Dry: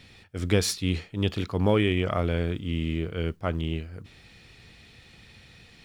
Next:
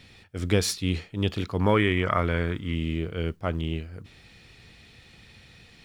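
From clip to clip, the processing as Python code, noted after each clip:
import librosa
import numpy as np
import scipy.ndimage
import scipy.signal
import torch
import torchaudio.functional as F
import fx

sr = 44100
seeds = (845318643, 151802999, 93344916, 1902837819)

y = fx.spec_box(x, sr, start_s=1.61, length_s=1.13, low_hz=870.0, high_hz=2300.0, gain_db=7)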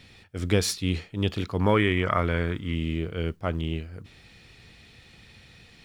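y = x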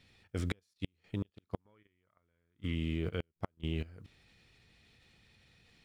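y = fx.gate_flip(x, sr, shuts_db=-16.0, range_db=-38)
y = fx.level_steps(y, sr, step_db=12)
y = fx.upward_expand(y, sr, threshold_db=-51.0, expansion=1.5)
y = y * librosa.db_to_amplitude(3.0)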